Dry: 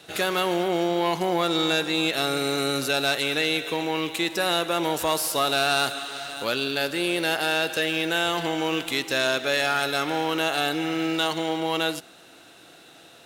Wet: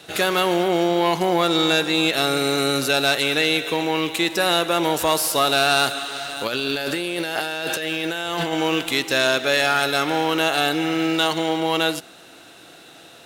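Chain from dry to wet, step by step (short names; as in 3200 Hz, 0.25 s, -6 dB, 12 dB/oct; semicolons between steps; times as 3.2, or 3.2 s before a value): 6.47–8.53 negative-ratio compressor -30 dBFS, ratio -1; gain +4.5 dB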